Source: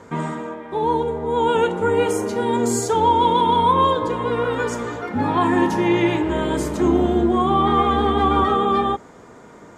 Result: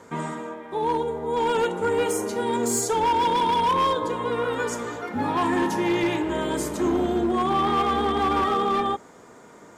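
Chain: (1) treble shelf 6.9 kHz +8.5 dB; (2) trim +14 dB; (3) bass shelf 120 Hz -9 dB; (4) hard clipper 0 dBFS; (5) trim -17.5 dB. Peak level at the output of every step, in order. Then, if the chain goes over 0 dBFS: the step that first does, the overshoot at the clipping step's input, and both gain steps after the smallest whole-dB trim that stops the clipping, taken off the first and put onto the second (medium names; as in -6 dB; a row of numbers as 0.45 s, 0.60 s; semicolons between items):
-6.5 dBFS, +7.5 dBFS, +7.5 dBFS, 0.0 dBFS, -17.5 dBFS; step 2, 7.5 dB; step 2 +6 dB, step 5 -9.5 dB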